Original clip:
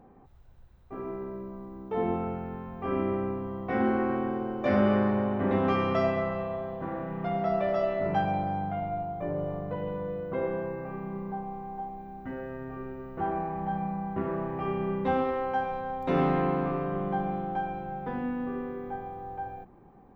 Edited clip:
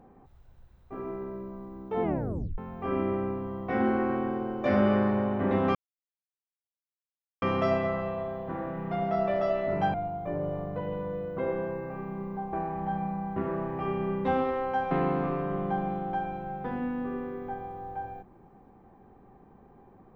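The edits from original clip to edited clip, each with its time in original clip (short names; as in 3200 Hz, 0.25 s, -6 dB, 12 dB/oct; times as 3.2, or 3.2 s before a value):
2.03 tape stop 0.55 s
5.75 insert silence 1.67 s
8.27–8.89 cut
11.48–13.33 cut
15.71–16.33 cut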